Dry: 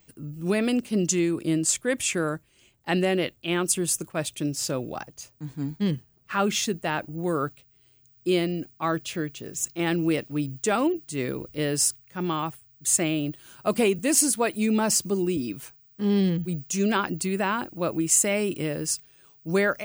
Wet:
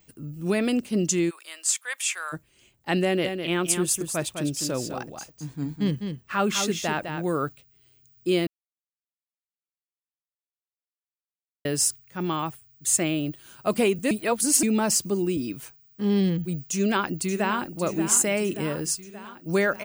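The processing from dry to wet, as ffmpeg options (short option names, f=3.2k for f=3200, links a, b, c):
-filter_complex "[0:a]asplit=3[a][b][c];[a]afade=t=out:st=1.29:d=0.02[d];[b]highpass=f=910:w=0.5412,highpass=f=910:w=1.3066,afade=t=in:st=1.29:d=0.02,afade=t=out:st=2.32:d=0.02[e];[c]afade=t=in:st=2.32:d=0.02[f];[d][e][f]amix=inputs=3:normalize=0,asettb=1/sr,asplit=3[g][h][i];[g]atrim=end=3.044[j];[h]atrim=start=3.04:end=7.24,asetpts=PTS-STARTPTS,afade=t=in:d=0.004:c=qsin,afade=t=out:st=4.196:d=0.004:c=qsin,aecho=1:1:205:0.447,atrim=end_sample=185220[k];[i]atrim=start=7.236[l];[j][k]acrossfade=d=0.004:c1=hsin:c2=qsin[m];[m][l]acrossfade=d=0.004:c1=qsin:c2=hsin,asplit=2[n][o];[o]afade=t=in:st=16.69:d=0.01,afade=t=out:st=17.7:d=0.01,aecho=0:1:580|1160|1740|2320|2900|3480|4060|4640:0.298538|0.19405|0.126132|0.0819861|0.0532909|0.0346391|0.0225154|0.014635[p];[n][p]amix=inputs=2:normalize=0,asplit=5[q][r][s][t][u];[q]atrim=end=8.47,asetpts=PTS-STARTPTS,afade=t=out:st=8.466:d=0.004:c=hsin[v];[r]atrim=start=8.47:end=11.65,asetpts=PTS-STARTPTS,volume=0[w];[s]atrim=start=11.65:end=14.112,asetpts=PTS-STARTPTS,afade=t=in:d=0.004:c=hsin[x];[t]atrim=start=14.108:end=14.632,asetpts=PTS-STARTPTS,areverse[y];[u]atrim=start=14.628[z];[v][w][x]concat=n=3:v=0:a=1[aa];[aa][y]acrossfade=d=0.004:c1=hsin:c2=hsin[ab];[ab][z]acrossfade=d=0.004:c1=hsin:c2=hsin"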